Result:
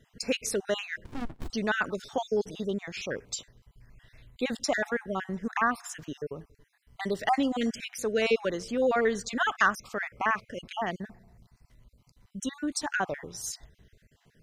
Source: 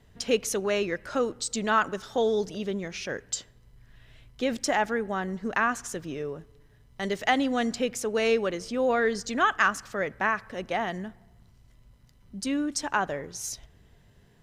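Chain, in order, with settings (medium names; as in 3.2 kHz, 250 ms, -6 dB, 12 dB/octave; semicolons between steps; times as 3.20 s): random holes in the spectrogram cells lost 39%; 1.04–1.50 s: sliding maximum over 65 samples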